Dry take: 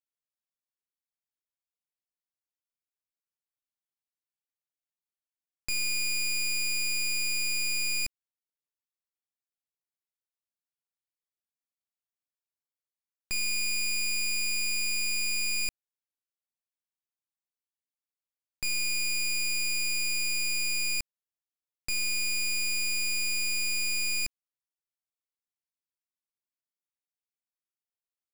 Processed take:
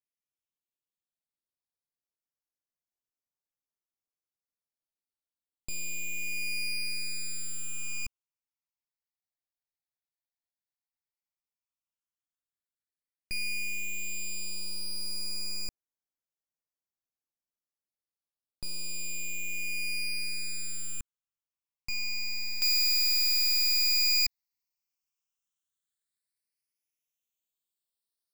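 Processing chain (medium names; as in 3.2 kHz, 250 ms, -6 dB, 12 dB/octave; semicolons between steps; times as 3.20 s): phase shifter stages 8, 0.075 Hz, lowest notch 370–3300 Hz; treble shelf 2 kHz -2.5 dB, from 22.62 s +11.5 dB; trim -1.5 dB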